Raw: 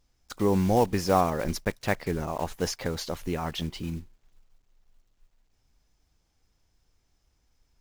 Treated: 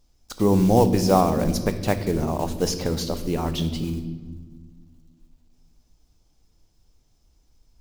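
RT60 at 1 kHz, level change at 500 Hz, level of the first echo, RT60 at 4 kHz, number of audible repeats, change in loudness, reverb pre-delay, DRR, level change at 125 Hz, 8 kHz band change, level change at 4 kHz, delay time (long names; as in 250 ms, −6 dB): 1.5 s, +5.0 dB, no echo audible, 0.95 s, no echo audible, +5.5 dB, 3 ms, 9.0 dB, +7.0 dB, +5.5 dB, +4.5 dB, no echo audible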